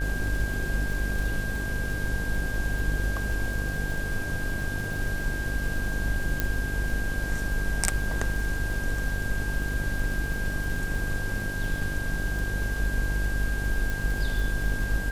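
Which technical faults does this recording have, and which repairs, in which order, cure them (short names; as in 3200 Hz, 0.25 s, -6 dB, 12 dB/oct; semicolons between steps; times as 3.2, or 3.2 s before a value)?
buzz 50 Hz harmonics 18 -32 dBFS
crackle 35/s -32 dBFS
tone 1600 Hz -33 dBFS
6.4 pop -10 dBFS
13.9 pop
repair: de-click; notch 1600 Hz, Q 30; de-hum 50 Hz, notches 18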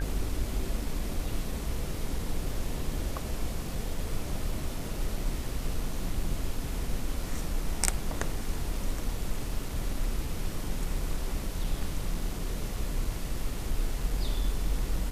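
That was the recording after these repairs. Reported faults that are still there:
none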